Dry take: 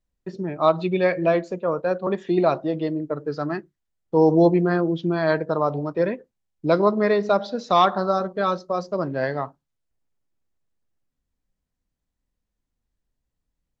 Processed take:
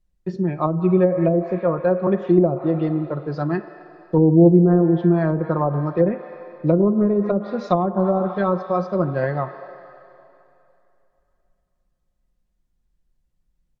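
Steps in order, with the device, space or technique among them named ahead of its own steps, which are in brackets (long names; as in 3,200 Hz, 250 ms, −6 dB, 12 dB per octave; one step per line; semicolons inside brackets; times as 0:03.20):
filtered reverb send (on a send at −10 dB: high-pass filter 440 Hz 12 dB per octave + low-pass filter 3,200 Hz 12 dB per octave + convolution reverb RT60 2.9 s, pre-delay 30 ms)
on the sum: treble cut that deepens with the level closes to 460 Hz, closed at −14.5 dBFS
low-shelf EQ 200 Hz +9.5 dB
comb filter 5.6 ms, depth 47%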